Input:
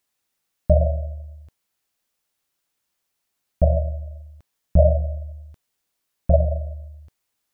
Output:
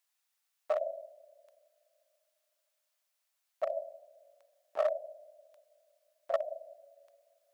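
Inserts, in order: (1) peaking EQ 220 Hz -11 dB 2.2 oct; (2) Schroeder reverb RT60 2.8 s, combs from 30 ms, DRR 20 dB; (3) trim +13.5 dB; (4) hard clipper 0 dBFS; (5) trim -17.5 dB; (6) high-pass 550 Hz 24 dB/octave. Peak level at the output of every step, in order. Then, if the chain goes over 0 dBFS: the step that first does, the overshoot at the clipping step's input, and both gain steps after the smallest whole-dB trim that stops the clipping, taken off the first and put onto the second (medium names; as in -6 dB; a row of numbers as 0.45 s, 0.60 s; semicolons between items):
-7.0 dBFS, -7.0 dBFS, +6.5 dBFS, 0.0 dBFS, -17.5 dBFS, -17.5 dBFS; step 3, 6.5 dB; step 3 +6.5 dB, step 5 -10.5 dB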